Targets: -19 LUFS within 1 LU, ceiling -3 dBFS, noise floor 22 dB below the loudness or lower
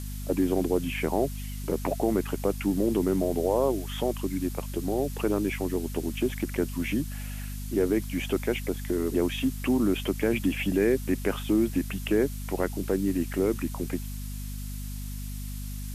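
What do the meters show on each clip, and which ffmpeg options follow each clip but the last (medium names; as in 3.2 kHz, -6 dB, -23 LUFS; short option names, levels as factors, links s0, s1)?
hum 50 Hz; highest harmonic 250 Hz; hum level -33 dBFS; noise floor -35 dBFS; noise floor target -51 dBFS; loudness -28.5 LUFS; peak level -12.0 dBFS; loudness target -19.0 LUFS
-> -af "bandreject=f=50:t=h:w=4,bandreject=f=100:t=h:w=4,bandreject=f=150:t=h:w=4,bandreject=f=200:t=h:w=4,bandreject=f=250:t=h:w=4"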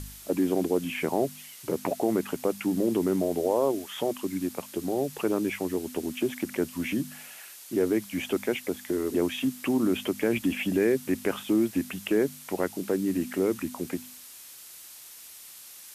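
hum not found; noise floor -47 dBFS; noise floor target -51 dBFS
-> -af "afftdn=nr=6:nf=-47"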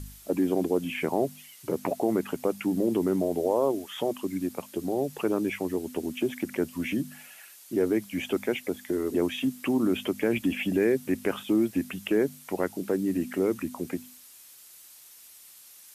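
noise floor -51 dBFS; loudness -28.5 LUFS; peak level -13.0 dBFS; loudness target -19.0 LUFS
-> -af "volume=2.99"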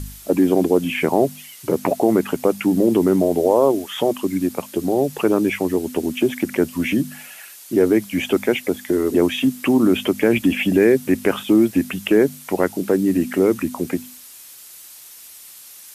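loudness -19.0 LUFS; peak level -3.5 dBFS; noise floor -42 dBFS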